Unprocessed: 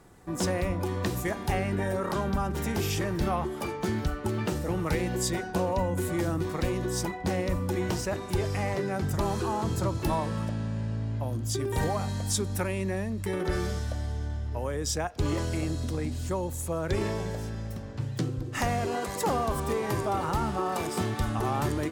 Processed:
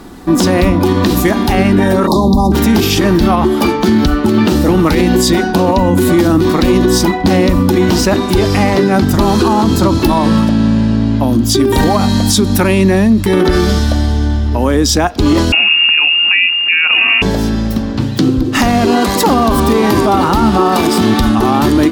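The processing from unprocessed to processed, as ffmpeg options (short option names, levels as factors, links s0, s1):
-filter_complex "[0:a]asettb=1/sr,asplit=3[s0][s1][s2];[s0]atrim=end=2.074[s3];[s1]atrim=start=2.07:end=2.52,asetpts=PTS-STARTPTS,afade=t=in:d=0.004:c=qsin,afade=t=out:st=0.446:d=0.004:c=qsin,asuperstop=centerf=2000:order=20:qfactor=0.8[s4];[s2]atrim=start=2.516[s5];[s3][s4]acrossfade=d=0.004:c1=hsin:c2=qsin[s6];[s6][s5]acrossfade=d=0.004:c1=qsin:c2=hsin,asettb=1/sr,asplit=3[s7][s8][s9];[s7]atrim=end=15.524[s10];[s8]atrim=start=15.52:end=17.22,asetpts=PTS-STARTPTS,afade=t=in:d=0.004:c=qsin,afade=t=out:st=1.696:d=0.004:c=qsin,lowpass=f=2500:t=q:w=0.5098,lowpass=f=2500:t=q:w=0.6013,lowpass=f=2500:t=q:w=0.9,lowpass=f=2500:t=q:w=2.563,afreqshift=-2900[s11];[s9]atrim=start=17.216[s12];[s10][s11]acrossfade=d=0.004:c1=hsin:c2=qsin[s13];[s13][s12]acrossfade=d=0.004:c1=qsin:c2=hsin,equalizer=f=125:t=o:w=1:g=-11,equalizer=f=250:t=o:w=1:g=10,equalizer=f=500:t=o:w=1:g=-6,equalizer=f=2000:t=o:w=1:g=-4,equalizer=f=4000:t=o:w=1:g=5,equalizer=f=8000:t=o:w=1:g=-7,alimiter=level_in=14.1:limit=0.891:release=50:level=0:latency=1,volume=0.891"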